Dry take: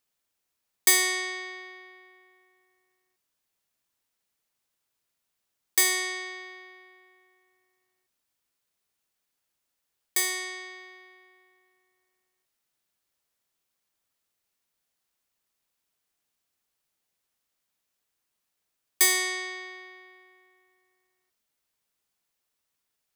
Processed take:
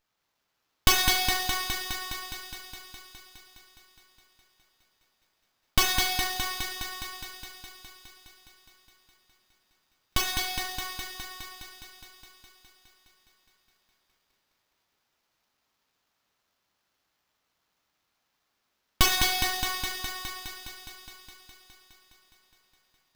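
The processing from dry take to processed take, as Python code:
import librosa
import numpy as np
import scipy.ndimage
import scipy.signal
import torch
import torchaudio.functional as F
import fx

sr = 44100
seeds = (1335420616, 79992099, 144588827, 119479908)

p1 = scipy.signal.sosfilt(scipy.signal.butter(4, 570.0, 'highpass', fs=sr, output='sos'), x)
p2 = fx.fixed_phaser(p1, sr, hz=1000.0, stages=4)
p3 = p2 + fx.echo_wet_highpass(p2, sr, ms=207, feedback_pct=75, hz=3300.0, wet_db=-3.5, dry=0)
p4 = fx.room_shoebox(p3, sr, seeds[0], volume_m3=150.0, walls='hard', distance_m=0.57)
p5 = fx.running_max(p4, sr, window=5)
y = p5 * 10.0 ** (3.5 / 20.0)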